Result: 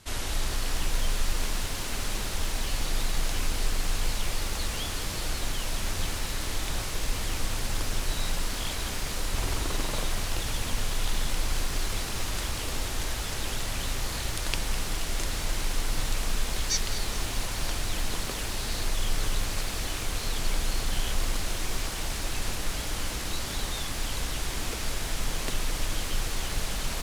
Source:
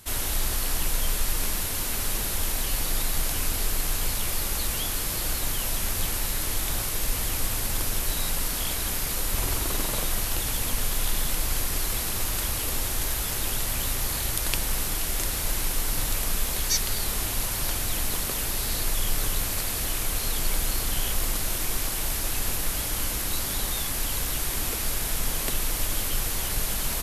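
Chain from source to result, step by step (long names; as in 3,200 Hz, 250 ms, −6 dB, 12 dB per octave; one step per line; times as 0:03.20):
low-pass filter 7,000 Hz 12 dB per octave
feedback echo at a low word length 205 ms, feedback 80%, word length 6 bits, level −14 dB
level −1.5 dB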